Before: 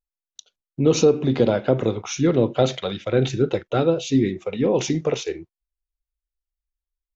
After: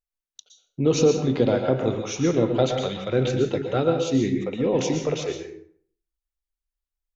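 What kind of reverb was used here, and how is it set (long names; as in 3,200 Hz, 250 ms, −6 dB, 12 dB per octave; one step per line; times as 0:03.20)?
dense smooth reverb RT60 0.56 s, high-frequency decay 0.7×, pre-delay 105 ms, DRR 4.5 dB
level −3 dB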